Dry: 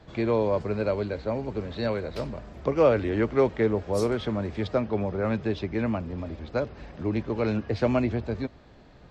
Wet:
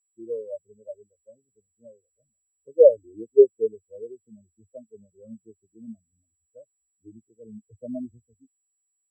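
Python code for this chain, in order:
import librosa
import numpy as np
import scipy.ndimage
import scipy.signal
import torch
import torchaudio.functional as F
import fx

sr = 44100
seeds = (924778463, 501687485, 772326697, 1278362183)

y = x + 10.0 ** (-35.0 / 20.0) * np.sin(2.0 * np.pi * 7800.0 * np.arange(len(x)) / sr)
y = fx.spectral_expand(y, sr, expansion=4.0)
y = F.gain(torch.from_numpy(y), 5.5).numpy()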